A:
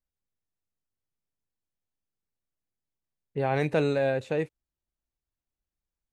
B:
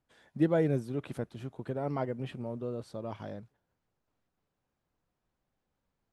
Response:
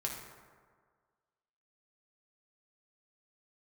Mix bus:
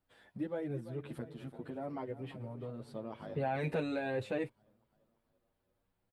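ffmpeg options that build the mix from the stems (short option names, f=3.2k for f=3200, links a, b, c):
-filter_complex "[0:a]alimiter=limit=-24dB:level=0:latency=1:release=27,volume=2dB[a];[1:a]acompressor=threshold=-42dB:ratio=2,volume=2.5dB,asplit=2[b][c];[c]volume=-14dB,aecho=0:1:340|680|1020|1360|1700|2040|2380|2720|3060:1|0.59|0.348|0.205|0.121|0.0715|0.0422|0.0249|0.0147[d];[a][b][d]amix=inputs=3:normalize=0,equalizer=f=6.3k:w=2.4:g=-9,asplit=2[e][f];[f]adelay=8.2,afreqshift=0.52[g];[e][g]amix=inputs=2:normalize=1"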